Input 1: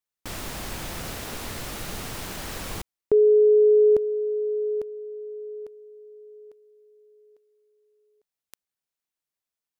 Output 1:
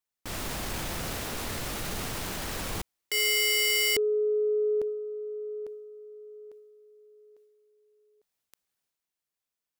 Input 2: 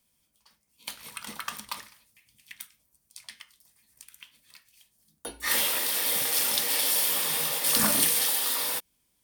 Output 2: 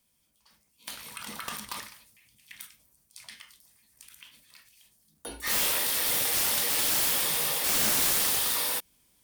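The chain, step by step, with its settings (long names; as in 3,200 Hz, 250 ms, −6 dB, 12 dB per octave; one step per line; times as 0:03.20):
wrap-around overflow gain 19 dB
transient designer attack −3 dB, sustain +6 dB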